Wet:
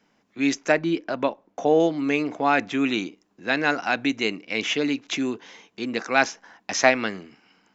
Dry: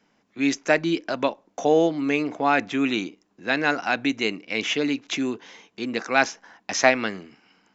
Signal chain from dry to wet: 0.72–1.8 high shelf 3800 Hz -11 dB

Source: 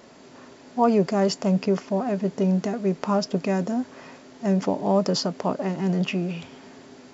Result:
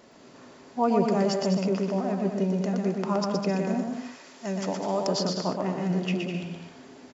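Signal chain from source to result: 3.92–5.07 tilt +2.5 dB/oct; on a send: bouncing-ball echo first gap 0.12 s, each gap 0.7×, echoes 5; on the sum: gain -4.5 dB

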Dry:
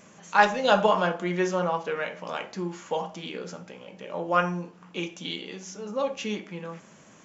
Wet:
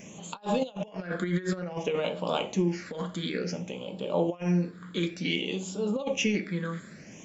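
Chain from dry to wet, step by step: negative-ratio compressor -30 dBFS, ratio -0.5; phaser stages 8, 0.56 Hz, lowest notch 780–1900 Hz; gain +3.5 dB

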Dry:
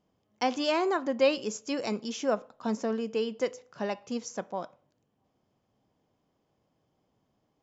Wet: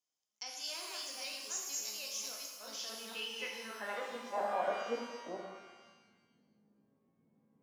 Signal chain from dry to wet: reverse delay 0.413 s, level -1.5 dB; in parallel at 0 dB: limiter -20 dBFS, peak gain reduction 9 dB; on the sum: band-pass sweep 6500 Hz -> 210 Hz, 2.45–5.79; shimmer reverb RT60 1.2 s, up +12 st, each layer -8 dB, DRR -0.5 dB; gain -5.5 dB

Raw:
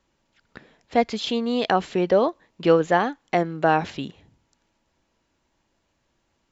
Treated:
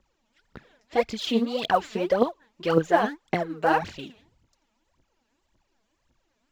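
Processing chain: phaser 1.8 Hz, delay 4.9 ms, feedback 77%; gain -6 dB

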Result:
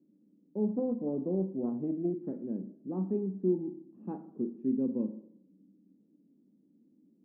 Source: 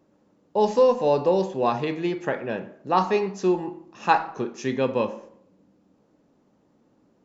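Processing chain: Butterworth band-pass 240 Hz, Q 1.7; 0.68–2.13 Doppler distortion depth 0.16 ms

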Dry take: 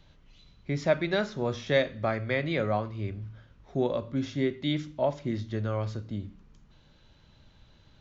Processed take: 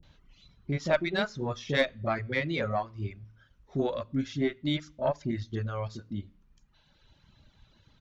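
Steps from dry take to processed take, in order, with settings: bands offset in time lows, highs 30 ms, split 480 Hz; reverb removal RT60 1.4 s; added harmonics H 3 -25 dB, 4 -22 dB, 6 -37 dB, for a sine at -13 dBFS; gain +2.5 dB

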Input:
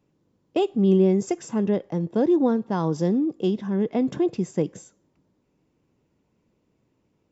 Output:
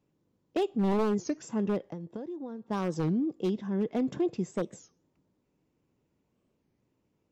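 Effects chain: 1.79–2.71 compressor 12:1, threshold -30 dBFS, peak gain reduction 14.5 dB; wavefolder -15 dBFS; record warp 33 1/3 rpm, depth 250 cents; gain -6 dB

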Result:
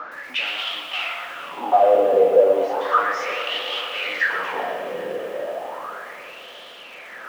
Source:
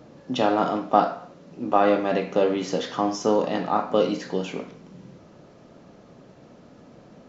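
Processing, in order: HPF 61 Hz 24 dB/oct; in parallel at 0 dB: compressor, threshold -32 dBFS, peak gain reduction 19 dB; on the sum: overdrive pedal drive 35 dB, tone 3500 Hz, clips at -2 dBFS; wah 0.34 Hz 470–3200 Hz, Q 7.1; diffused feedback echo 0.455 s, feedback 65%, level -15.5 dB; on a send at -14 dB: reverb RT60 1.0 s, pre-delay 0.123 s; on the sum: lo-fi delay 0.116 s, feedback 55%, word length 7-bit, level -10 dB

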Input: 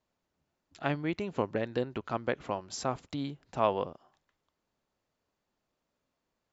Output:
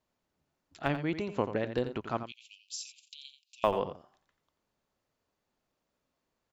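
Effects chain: 2.23–3.64 steep high-pass 2500 Hz 96 dB/oct; in parallel at -5.5 dB: Schmitt trigger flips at -22.5 dBFS; on the sum: echo 87 ms -10.5 dB

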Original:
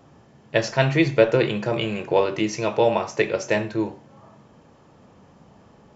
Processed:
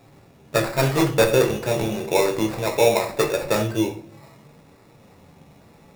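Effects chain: in parallel at -5 dB: wrapped overs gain 7 dB; on the sum: flange 0.81 Hz, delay 8.3 ms, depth 6.7 ms, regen +64%; sample-rate reducer 3100 Hz, jitter 0%; shoebox room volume 40 m³, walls mixed, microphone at 0.3 m

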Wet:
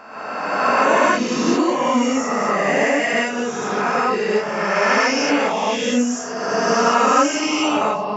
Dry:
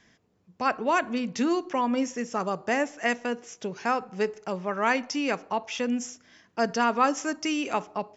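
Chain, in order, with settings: spectral swells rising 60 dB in 1.91 s; non-linear reverb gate 0.2 s rising, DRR -7.5 dB; gain -3.5 dB

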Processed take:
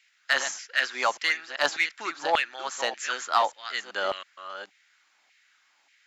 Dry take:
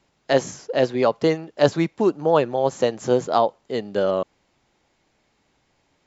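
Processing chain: reverse delay 0.391 s, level -10 dB; HPF 150 Hz; band shelf 670 Hz -10 dB; LFO high-pass saw down 1.7 Hz 750–2200 Hz; in parallel at -5 dB: hard clip -20.5 dBFS, distortion -11 dB; on the sum: gain -1 dB

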